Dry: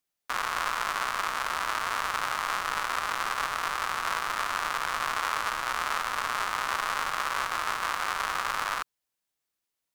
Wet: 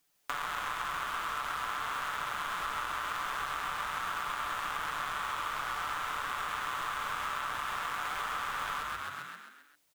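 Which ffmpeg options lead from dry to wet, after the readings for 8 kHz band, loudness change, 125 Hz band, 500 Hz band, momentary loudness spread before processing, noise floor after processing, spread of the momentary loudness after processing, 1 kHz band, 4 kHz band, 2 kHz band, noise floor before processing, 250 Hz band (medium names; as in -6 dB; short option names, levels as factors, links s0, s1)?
-8.0 dB, -5.5 dB, -1.5 dB, -6.5 dB, 1 LU, -63 dBFS, 2 LU, -5.0 dB, -6.0 dB, -5.5 dB, -85 dBFS, -4.5 dB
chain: -filter_complex "[0:a]asplit=2[s0][s1];[s1]alimiter=limit=0.0708:level=0:latency=1,volume=1.06[s2];[s0][s2]amix=inputs=2:normalize=0,asoftclip=type=tanh:threshold=0.106,aecho=1:1:6.9:0.65,asplit=8[s3][s4][s5][s6][s7][s8][s9][s10];[s4]adelay=132,afreqshift=41,volume=0.708[s11];[s5]adelay=264,afreqshift=82,volume=0.367[s12];[s6]adelay=396,afreqshift=123,volume=0.191[s13];[s7]adelay=528,afreqshift=164,volume=0.1[s14];[s8]adelay=660,afreqshift=205,volume=0.0519[s15];[s9]adelay=792,afreqshift=246,volume=0.0269[s16];[s10]adelay=924,afreqshift=287,volume=0.014[s17];[s3][s11][s12][s13][s14][s15][s16][s17]amix=inputs=8:normalize=0,acompressor=threshold=0.0141:ratio=4,volume=1.33"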